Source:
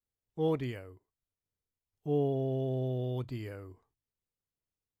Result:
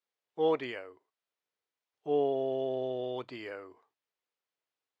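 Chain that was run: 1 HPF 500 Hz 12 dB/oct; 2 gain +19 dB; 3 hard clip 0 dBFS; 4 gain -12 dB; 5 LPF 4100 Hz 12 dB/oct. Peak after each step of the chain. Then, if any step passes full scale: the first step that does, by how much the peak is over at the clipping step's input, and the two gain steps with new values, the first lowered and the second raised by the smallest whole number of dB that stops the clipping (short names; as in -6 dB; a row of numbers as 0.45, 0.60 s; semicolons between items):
-25.0, -6.0, -6.0, -18.0, -18.0 dBFS; no overload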